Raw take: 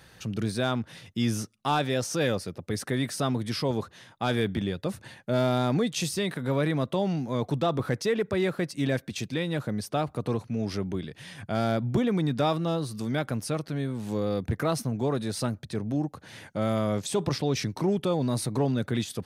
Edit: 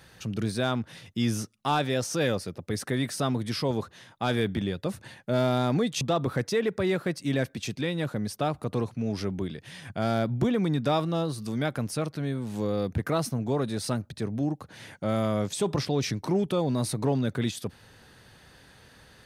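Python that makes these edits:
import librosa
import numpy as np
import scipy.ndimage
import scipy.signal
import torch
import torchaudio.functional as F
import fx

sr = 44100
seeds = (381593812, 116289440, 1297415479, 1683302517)

y = fx.edit(x, sr, fx.cut(start_s=6.01, length_s=1.53), tone=tone)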